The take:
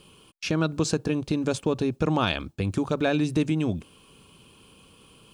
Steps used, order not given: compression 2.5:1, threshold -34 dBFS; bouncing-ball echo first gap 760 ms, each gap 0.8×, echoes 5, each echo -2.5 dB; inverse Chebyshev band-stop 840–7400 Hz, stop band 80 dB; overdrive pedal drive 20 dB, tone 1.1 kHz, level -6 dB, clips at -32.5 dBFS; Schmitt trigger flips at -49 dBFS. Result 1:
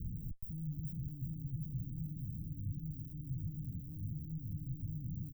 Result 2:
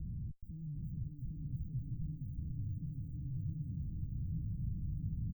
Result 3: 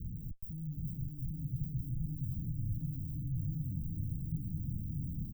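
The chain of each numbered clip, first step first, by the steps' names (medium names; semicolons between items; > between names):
overdrive pedal > bouncing-ball echo > Schmitt trigger > compression > inverse Chebyshev band-stop; Schmitt trigger > compression > bouncing-ball echo > overdrive pedal > inverse Chebyshev band-stop; overdrive pedal > Schmitt trigger > inverse Chebyshev band-stop > compression > bouncing-ball echo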